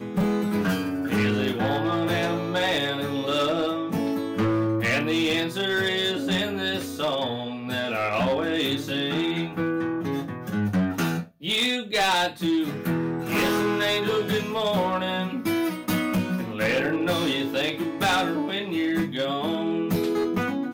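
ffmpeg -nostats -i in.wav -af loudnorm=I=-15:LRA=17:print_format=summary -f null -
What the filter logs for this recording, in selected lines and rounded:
Input Integrated:    -25.0 LUFS
Input True Peak:     -17.6 dBTP
Input LRA:             1.8 LU
Input Threshold:     -35.0 LUFS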